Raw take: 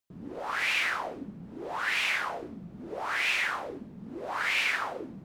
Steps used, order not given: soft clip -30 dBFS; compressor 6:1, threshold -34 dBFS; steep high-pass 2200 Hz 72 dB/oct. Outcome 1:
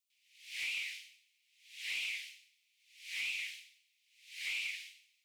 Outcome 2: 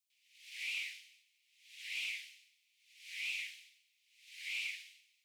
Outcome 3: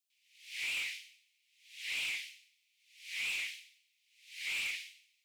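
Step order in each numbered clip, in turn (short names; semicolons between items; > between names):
steep high-pass > compressor > soft clip; compressor > steep high-pass > soft clip; steep high-pass > soft clip > compressor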